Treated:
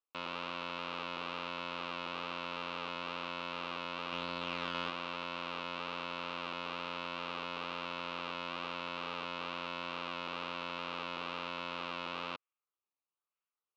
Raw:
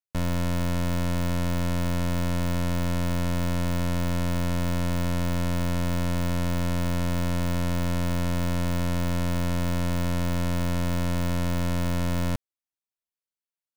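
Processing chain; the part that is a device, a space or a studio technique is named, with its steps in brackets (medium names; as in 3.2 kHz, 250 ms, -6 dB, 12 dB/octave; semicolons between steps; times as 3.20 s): 4.12–4.90 s: bass shelf 490 Hz +5.5 dB; circuit-bent sampling toy (decimation with a swept rate 19×, swing 100% 1.1 Hz; cabinet simulation 530–4100 Hz, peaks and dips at 670 Hz -7 dB, 1.2 kHz +8 dB, 1.8 kHz -8 dB, 2.7 kHz +9 dB, 3.9 kHz +4 dB); trim -5.5 dB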